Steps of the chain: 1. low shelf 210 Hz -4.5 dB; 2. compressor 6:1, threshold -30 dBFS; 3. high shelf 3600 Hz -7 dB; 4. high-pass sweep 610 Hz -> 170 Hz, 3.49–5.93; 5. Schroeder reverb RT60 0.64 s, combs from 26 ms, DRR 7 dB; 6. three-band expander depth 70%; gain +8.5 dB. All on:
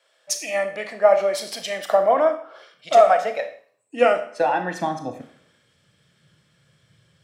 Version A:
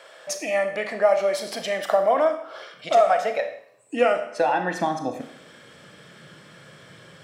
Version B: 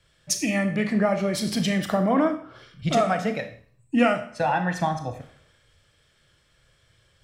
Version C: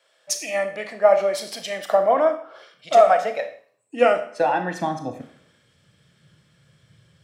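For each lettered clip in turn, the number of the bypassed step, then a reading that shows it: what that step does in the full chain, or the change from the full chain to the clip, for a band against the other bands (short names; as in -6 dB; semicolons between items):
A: 6, 8 kHz band -3.5 dB; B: 4, 125 Hz band +13.5 dB; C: 1, 125 Hz band +2.0 dB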